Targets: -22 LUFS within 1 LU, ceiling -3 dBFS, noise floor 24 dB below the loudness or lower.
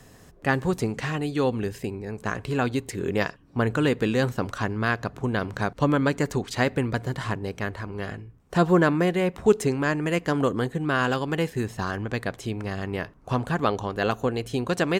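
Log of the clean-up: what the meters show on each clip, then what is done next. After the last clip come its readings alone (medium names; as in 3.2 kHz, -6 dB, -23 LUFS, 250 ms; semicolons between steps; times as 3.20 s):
loudness -26.0 LUFS; peak level -5.5 dBFS; loudness target -22.0 LUFS
-> trim +4 dB; peak limiter -3 dBFS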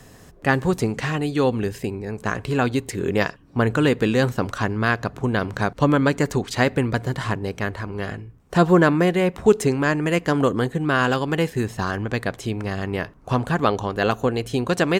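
loudness -22.0 LUFS; peak level -3.0 dBFS; noise floor -48 dBFS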